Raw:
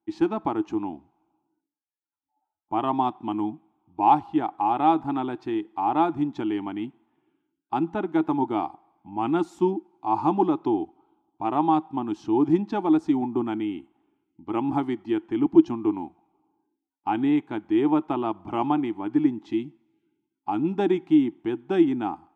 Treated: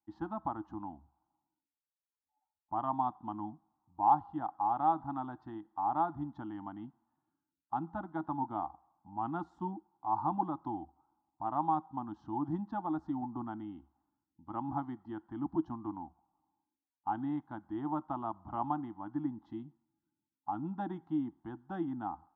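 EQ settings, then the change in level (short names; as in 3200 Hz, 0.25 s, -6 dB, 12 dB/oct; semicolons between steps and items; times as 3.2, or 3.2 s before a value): LPF 2300 Hz 12 dB/oct; bell 71 Hz +11.5 dB 0.28 oct; fixed phaser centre 1000 Hz, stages 4; -7.0 dB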